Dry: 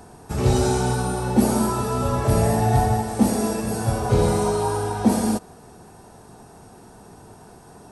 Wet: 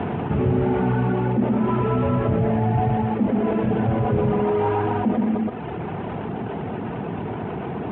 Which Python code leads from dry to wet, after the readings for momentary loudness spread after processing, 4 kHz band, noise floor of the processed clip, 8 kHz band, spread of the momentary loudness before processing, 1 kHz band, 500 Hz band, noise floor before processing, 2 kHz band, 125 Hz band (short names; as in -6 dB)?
9 LU, n/a, -30 dBFS, under -40 dB, 5 LU, -0.5 dB, +1.0 dB, -47 dBFS, 0.0 dB, +0.5 dB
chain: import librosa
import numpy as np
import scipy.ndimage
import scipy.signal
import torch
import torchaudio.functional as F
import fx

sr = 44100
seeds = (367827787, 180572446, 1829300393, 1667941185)

p1 = fx.cvsd(x, sr, bps=16000)
p2 = fx.lowpass(p1, sr, hz=2500.0, slope=6)
p3 = fx.dereverb_blind(p2, sr, rt60_s=0.83)
p4 = scipy.signal.sosfilt(scipy.signal.butter(2, 130.0, 'highpass', fs=sr, output='sos'), p3)
p5 = fx.low_shelf(p4, sr, hz=380.0, db=9.0)
p6 = fx.rider(p5, sr, range_db=10, speed_s=0.5)
p7 = p6 + fx.echo_single(p6, sr, ms=122, db=-4.5, dry=0)
p8 = fx.env_flatten(p7, sr, amount_pct=70)
y = F.gain(torch.from_numpy(p8), -8.5).numpy()